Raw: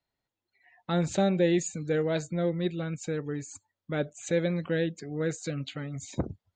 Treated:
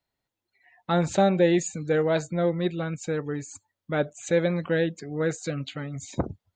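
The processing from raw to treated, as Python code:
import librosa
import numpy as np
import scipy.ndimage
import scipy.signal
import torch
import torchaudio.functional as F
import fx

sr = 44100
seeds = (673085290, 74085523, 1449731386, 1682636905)

y = fx.dynamic_eq(x, sr, hz=960.0, q=0.94, threshold_db=-44.0, ratio=4.0, max_db=7)
y = y * 10.0 ** (2.0 / 20.0)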